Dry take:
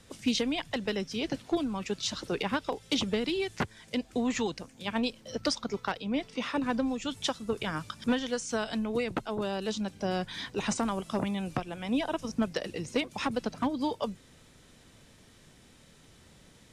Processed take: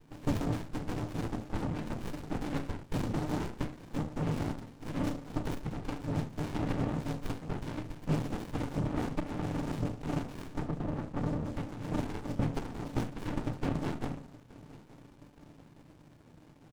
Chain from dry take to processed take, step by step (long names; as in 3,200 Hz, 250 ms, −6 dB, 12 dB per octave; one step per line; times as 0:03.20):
0:10.58–0:11.45: Butterworth low-pass 540 Hz
in parallel at 0 dB: downward compressor, threshold −38 dBFS, peak gain reduction 14.5 dB
on the sum: cochlear-implant simulation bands 4
on a send: repeating echo 873 ms, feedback 54%, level −20 dB
on the sum: feedback delay network reverb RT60 0.39 s, low-frequency decay 1.3×, high-frequency decay 0.75×, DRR 2 dB
windowed peak hold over 65 samples
level −5.5 dB